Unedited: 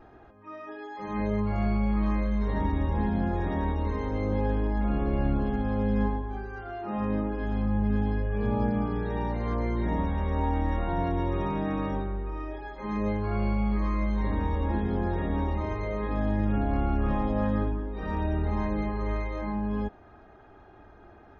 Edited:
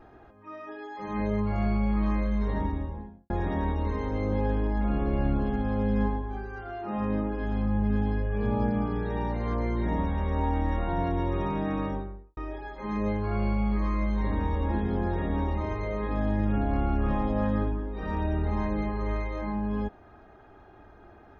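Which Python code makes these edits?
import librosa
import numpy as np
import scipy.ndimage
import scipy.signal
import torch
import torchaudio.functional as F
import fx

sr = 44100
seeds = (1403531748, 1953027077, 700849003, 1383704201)

y = fx.studio_fade_out(x, sr, start_s=2.4, length_s=0.9)
y = fx.studio_fade_out(y, sr, start_s=11.79, length_s=0.58)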